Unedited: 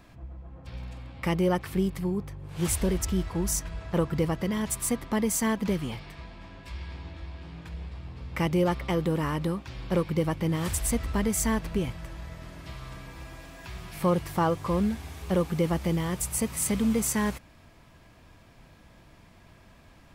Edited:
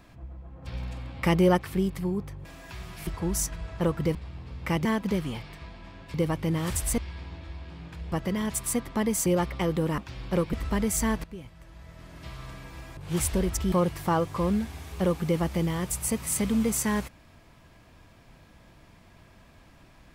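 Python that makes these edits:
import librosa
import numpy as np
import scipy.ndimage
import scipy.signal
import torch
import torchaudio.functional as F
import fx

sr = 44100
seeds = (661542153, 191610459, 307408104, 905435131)

y = fx.edit(x, sr, fx.clip_gain(start_s=0.62, length_s=0.95, db=4.0),
    fx.swap(start_s=2.45, length_s=0.75, other_s=13.4, other_length_s=0.62),
    fx.swap(start_s=4.28, length_s=1.14, other_s=7.85, other_length_s=0.7),
    fx.cut(start_s=9.27, length_s=0.3),
    fx.move(start_s=10.12, length_s=0.84, to_s=6.71),
    fx.fade_in_from(start_s=11.67, length_s=1.07, curve='qua', floor_db=-13.5), tone=tone)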